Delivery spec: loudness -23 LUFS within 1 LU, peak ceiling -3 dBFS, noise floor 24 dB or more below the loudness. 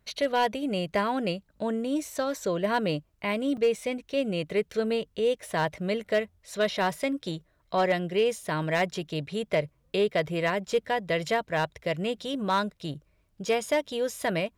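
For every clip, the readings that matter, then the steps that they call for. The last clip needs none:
clipped samples 0.3%; clipping level -17.0 dBFS; dropouts 1; longest dropout 5.2 ms; loudness -28.5 LUFS; peak level -17.0 dBFS; loudness target -23.0 LUFS
-> clip repair -17 dBFS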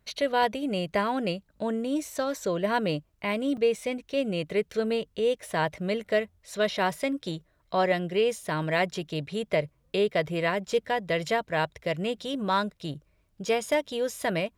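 clipped samples 0.0%; dropouts 1; longest dropout 5.2 ms
-> interpolate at 3.57 s, 5.2 ms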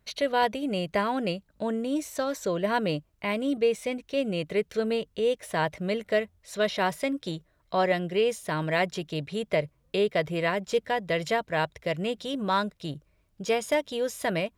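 dropouts 0; loudness -28.5 LUFS; peak level -11.5 dBFS; loudness target -23.0 LUFS
-> trim +5.5 dB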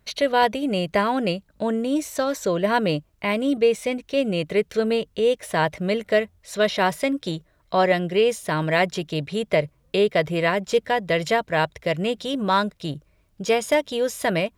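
loudness -23.0 LUFS; peak level -6.0 dBFS; noise floor -63 dBFS

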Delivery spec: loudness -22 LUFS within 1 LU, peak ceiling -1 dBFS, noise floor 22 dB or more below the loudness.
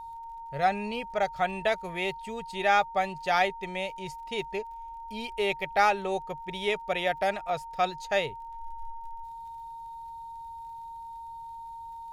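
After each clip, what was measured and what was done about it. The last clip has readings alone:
tick rate 41 per s; steady tone 920 Hz; tone level -39 dBFS; loudness -29.5 LUFS; peak level -10.0 dBFS; loudness target -22.0 LUFS
-> de-click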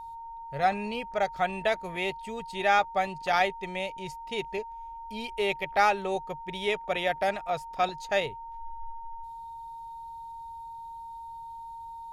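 tick rate 0.082 per s; steady tone 920 Hz; tone level -39 dBFS
-> band-stop 920 Hz, Q 30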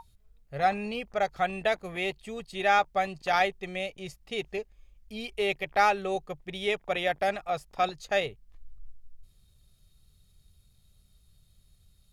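steady tone not found; loudness -29.5 LUFS; peak level -10.5 dBFS; loudness target -22.0 LUFS
-> trim +7.5 dB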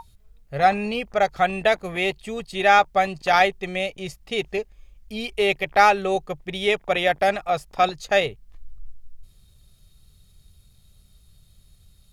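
loudness -22.0 LUFS; peak level -3.0 dBFS; noise floor -56 dBFS

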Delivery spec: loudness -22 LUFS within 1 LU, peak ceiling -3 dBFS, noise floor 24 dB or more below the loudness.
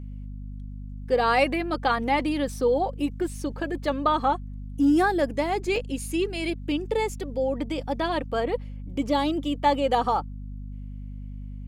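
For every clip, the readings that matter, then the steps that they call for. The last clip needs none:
dropouts 1; longest dropout 2.6 ms; hum 50 Hz; highest harmonic 250 Hz; hum level -34 dBFS; loudness -25.5 LUFS; peak level -9.5 dBFS; loudness target -22.0 LUFS
-> interpolate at 5.76 s, 2.6 ms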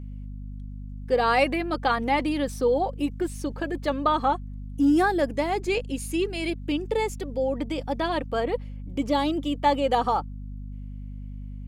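dropouts 0; hum 50 Hz; highest harmonic 250 Hz; hum level -34 dBFS
-> de-hum 50 Hz, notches 5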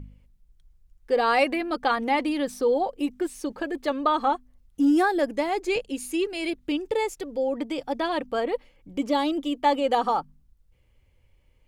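hum not found; loudness -26.0 LUFS; peak level -9.5 dBFS; loudness target -22.0 LUFS
-> trim +4 dB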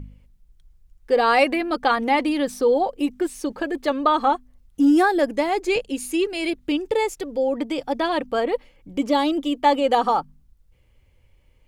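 loudness -22.0 LUFS; peak level -5.5 dBFS; noise floor -58 dBFS

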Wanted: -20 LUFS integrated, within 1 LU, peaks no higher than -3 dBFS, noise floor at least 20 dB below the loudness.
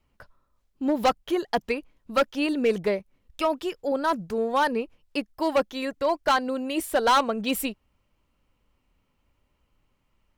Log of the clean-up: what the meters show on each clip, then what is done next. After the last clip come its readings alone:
clipped samples 1.1%; clipping level -15.5 dBFS; loudness -26.0 LUFS; peak level -15.5 dBFS; loudness target -20.0 LUFS
-> clip repair -15.5 dBFS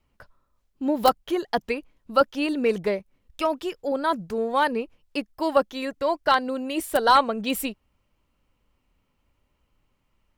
clipped samples 0.0%; loudness -25.0 LUFS; peak level -6.5 dBFS; loudness target -20.0 LUFS
-> trim +5 dB; peak limiter -3 dBFS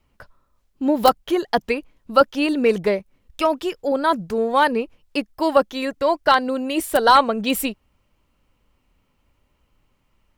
loudness -20.0 LUFS; peak level -3.0 dBFS; noise floor -67 dBFS

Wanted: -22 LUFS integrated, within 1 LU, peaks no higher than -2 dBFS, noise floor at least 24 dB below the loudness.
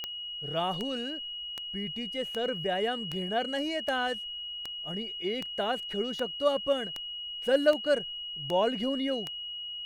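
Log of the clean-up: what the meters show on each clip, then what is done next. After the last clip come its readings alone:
clicks found 13; steady tone 2.9 kHz; tone level -36 dBFS; loudness -31.0 LUFS; peak level -10.5 dBFS; loudness target -22.0 LUFS
-> de-click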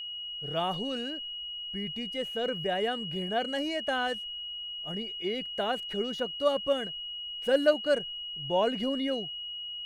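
clicks found 0; steady tone 2.9 kHz; tone level -36 dBFS
-> band-stop 2.9 kHz, Q 30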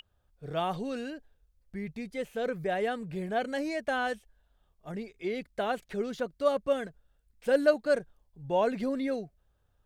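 steady tone not found; loudness -32.0 LUFS; peak level -10.5 dBFS; loudness target -22.0 LUFS
-> trim +10 dB; peak limiter -2 dBFS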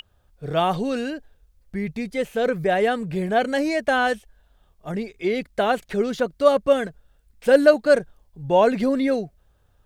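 loudness -22.0 LUFS; peak level -2.0 dBFS; noise floor -62 dBFS

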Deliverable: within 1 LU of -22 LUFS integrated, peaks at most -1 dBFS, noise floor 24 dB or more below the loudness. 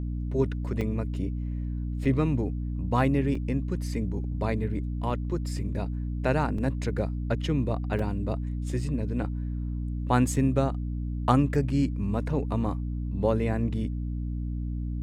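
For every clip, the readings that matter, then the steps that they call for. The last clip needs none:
dropouts 6; longest dropout 4.0 ms; hum 60 Hz; highest harmonic 300 Hz; hum level -28 dBFS; loudness -28.5 LUFS; peak level -5.5 dBFS; loudness target -22.0 LUFS
-> interpolate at 0.81/2.05/3.35/5.10/6.58/7.99 s, 4 ms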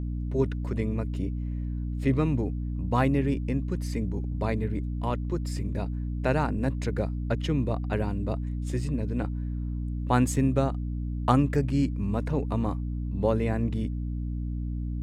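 dropouts 0; hum 60 Hz; highest harmonic 300 Hz; hum level -28 dBFS
-> de-hum 60 Hz, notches 5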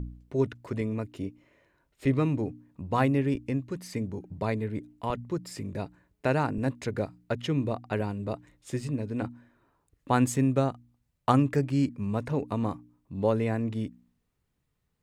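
hum not found; loudness -30.0 LUFS; peak level -6.5 dBFS; loudness target -22.0 LUFS
-> trim +8 dB; peak limiter -1 dBFS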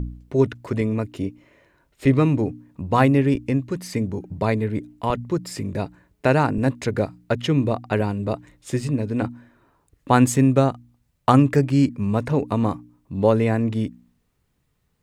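loudness -22.0 LUFS; peak level -1.0 dBFS; noise floor -69 dBFS

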